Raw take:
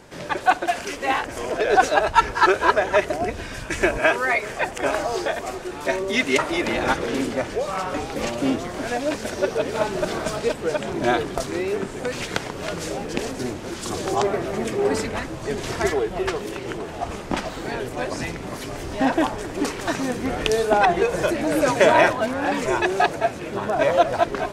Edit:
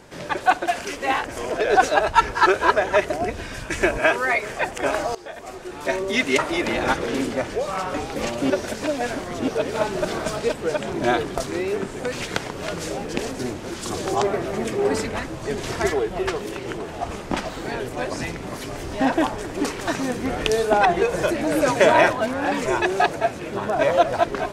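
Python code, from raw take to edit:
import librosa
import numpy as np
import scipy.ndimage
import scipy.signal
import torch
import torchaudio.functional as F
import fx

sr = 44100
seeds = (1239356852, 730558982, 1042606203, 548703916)

y = fx.edit(x, sr, fx.fade_in_from(start_s=5.15, length_s=0.81, floor_db=-19.0),
    fx.reverse_span(start_s=8.5, length_s=0.98), tone=tone)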